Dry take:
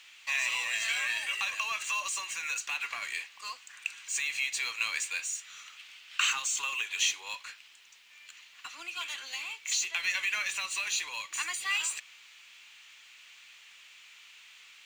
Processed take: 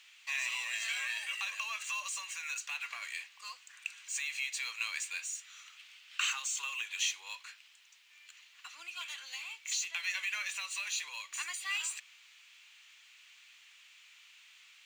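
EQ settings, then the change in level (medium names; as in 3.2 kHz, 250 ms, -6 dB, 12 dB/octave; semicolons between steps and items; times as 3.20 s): bass shelf 250 Hz -6 dB; bass shelf 500 Hz -11 dB; -4.5 dB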